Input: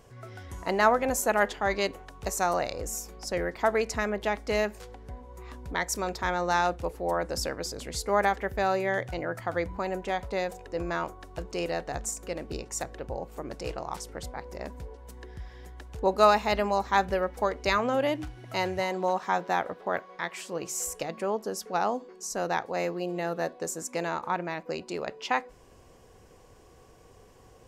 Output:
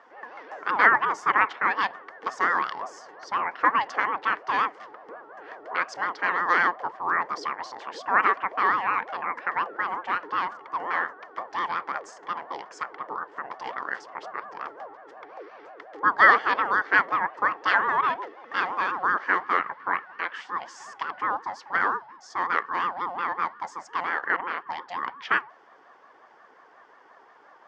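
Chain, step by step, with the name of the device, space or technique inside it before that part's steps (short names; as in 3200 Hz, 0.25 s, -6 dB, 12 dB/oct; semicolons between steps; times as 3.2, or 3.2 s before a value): voice changer toy (ring modulator with a swept carrier 530 Hz, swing 35%, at 5.6 Hz; speaker cabinet 550–4100 Hz, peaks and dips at 610 Hz -5 dB, 1100 Hz +4 dB, 1800 Hz +8 dB, 2500 Hz -7 dB, 3900 Hz -9 dB); gain +6 dB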